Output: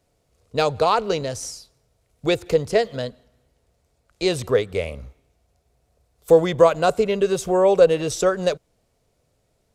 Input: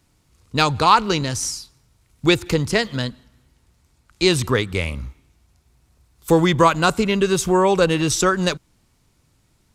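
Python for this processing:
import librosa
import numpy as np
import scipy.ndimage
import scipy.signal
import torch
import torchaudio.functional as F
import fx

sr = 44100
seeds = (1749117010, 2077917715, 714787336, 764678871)

y = fx.band_shelf(x, sr, hz=550.0, db=12.5, octaves=1.0)
y = y * librosa.db_to_amplitude(-7.5)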